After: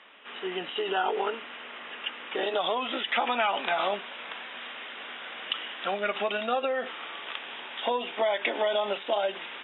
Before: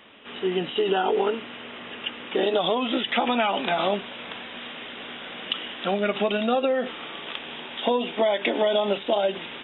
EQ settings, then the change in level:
resonant band-pass 1,500 Hz, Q 0.68
0.0 dB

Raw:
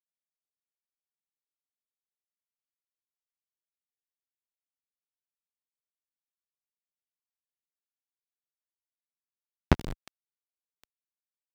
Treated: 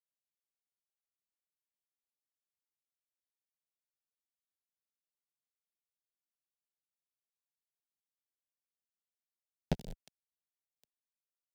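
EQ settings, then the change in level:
parametric band 2,100 Hz −6 dB
phaser with its sweep stopped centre 310 Hz, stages 6
−6.5 dB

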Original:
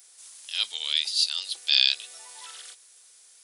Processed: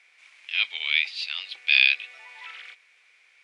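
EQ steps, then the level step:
low-pass with resonance 2,300 Hz, resonance Q 7.1
low-shelf EQ 390 Hz −8 dB
0.0 dB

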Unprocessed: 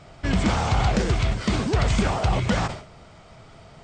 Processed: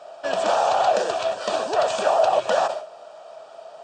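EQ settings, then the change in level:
high-pass with resonance 620 Hz, resonance Q 4.9
Butterworth band-reject 2,100 Hz, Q 4.4
0.0 dB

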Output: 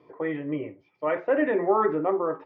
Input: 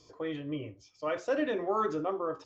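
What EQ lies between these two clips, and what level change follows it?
loudspeaker in its box 160–2,400 Hz, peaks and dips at 170 Hz +9 dB, 270 Hz +3 dB, 390 Hz +6 dB, 570 Hz +3 dB, 870 Hz +8 dB, 2,000 Hz +9 dB
+3.0 dB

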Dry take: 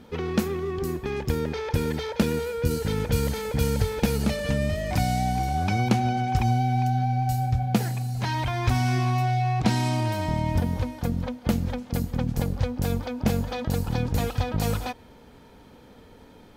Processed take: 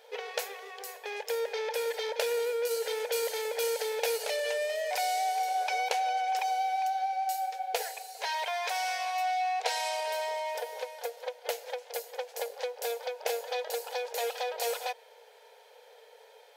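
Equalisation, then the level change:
linear-phase brick-wall high-pass 420 Hz
parametric band 1,200 Hz −12.5 dB 0.36 octaves
0.0 dB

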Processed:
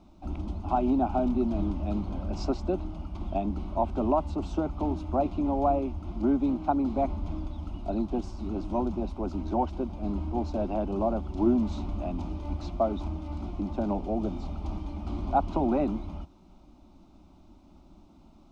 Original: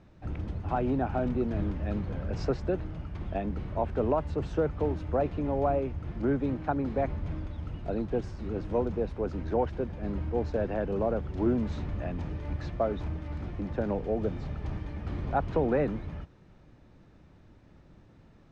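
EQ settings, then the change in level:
phaser with its sweep stopped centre 470 Hz, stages 6
+5.0 dB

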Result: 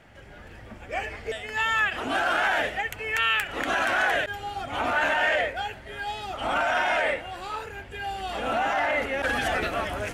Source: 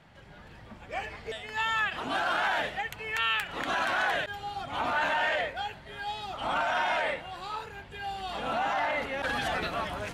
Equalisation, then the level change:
graphic EQ with 15 bands 160 Hz −9 dB, 1,000 Hz −7 dB, 4,000 Hz −8 dB
+7.0 dB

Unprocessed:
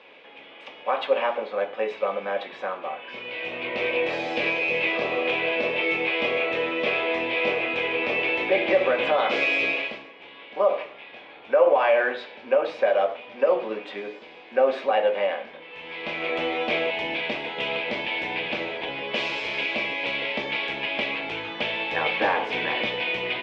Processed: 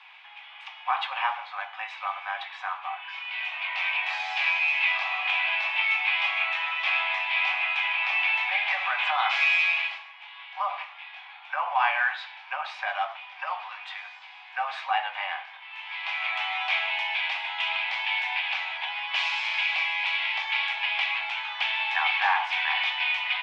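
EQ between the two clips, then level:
Butterworth high-pass 760 Hz 72 dB per octave
+1.5 dB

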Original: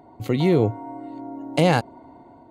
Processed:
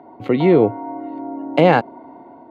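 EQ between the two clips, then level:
three-way crossover with the lows and the highs turned down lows −17 dB, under 180 Hz, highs −17 dB, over 3,400 Hz
high-shelf EQ 5,400 Hz −10.5 dB
+7.0 dB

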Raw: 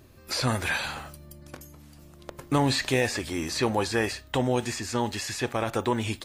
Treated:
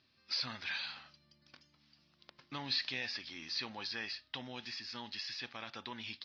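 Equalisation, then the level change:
Butterworth low-pass 5,200 Hz 72 dB per octave
first difference
low shelf with overshoot 300 Hz +9 dB, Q 1.5
0.0 dB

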